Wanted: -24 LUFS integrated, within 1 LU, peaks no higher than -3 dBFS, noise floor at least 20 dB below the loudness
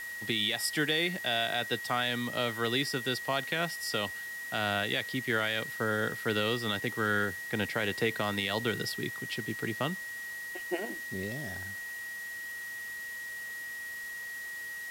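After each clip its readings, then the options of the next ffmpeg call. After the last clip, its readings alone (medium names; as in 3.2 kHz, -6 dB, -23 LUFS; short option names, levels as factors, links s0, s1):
steady tone 1.9 kHz; tone level -38 dBFS; noise floor -41 dBFS; noise floor target -52 dBFS; loudness -32.0 LUFS; peak level -17.0 dBFS; loudness target -24.0 LUFS
-> -af "bandreject=f=1900:w=30"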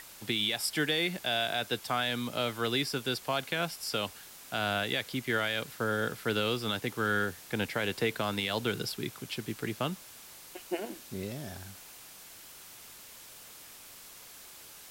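steady tone not found; noise floor -51 dBFS; noise floor target -52 dBFS
-> -af "afftdn=nr=6:nf=-51"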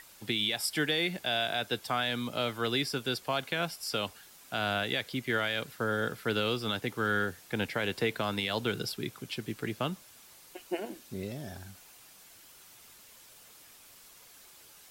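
noise floor -55 dBFS; loudness -32.0 LUFS; peak level -18.0 dBFS; loudness target -24.0 LUFS
-> -af "volume=2.51"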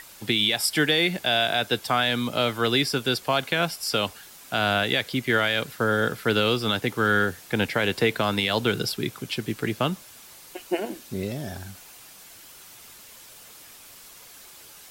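loudness -24.0 LUFS; peak level -10.0 dBFS; noise floor -47 dBFS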